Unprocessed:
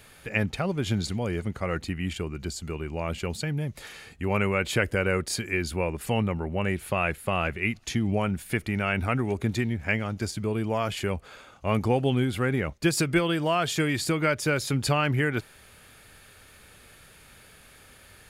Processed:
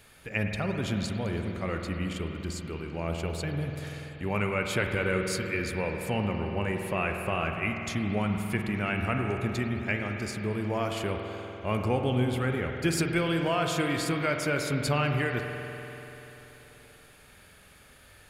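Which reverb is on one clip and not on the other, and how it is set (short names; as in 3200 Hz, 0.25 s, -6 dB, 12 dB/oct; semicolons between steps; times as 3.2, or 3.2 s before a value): spring tank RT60 3.6 s, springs 48 ms, chirp 65 ms, DRR 3 dB; gain -4 dB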